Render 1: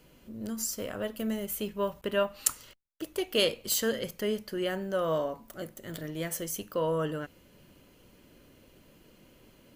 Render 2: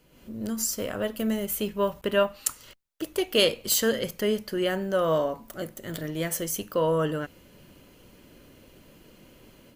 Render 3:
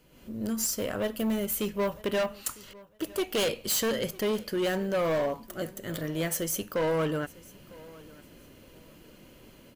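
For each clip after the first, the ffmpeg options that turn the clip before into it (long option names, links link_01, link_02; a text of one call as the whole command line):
ffmpeg -i in.wav -af "dynaudnorm=framelen=100:gausssize=3:maxgain=8dB,volume=-3dB" out.wav
ffmpeg -i in.wav -af "volume=24dB,asoftclip=hard,volume=-24dB,aecho=1:1:953|1906:0.0794|0.0183" out.wav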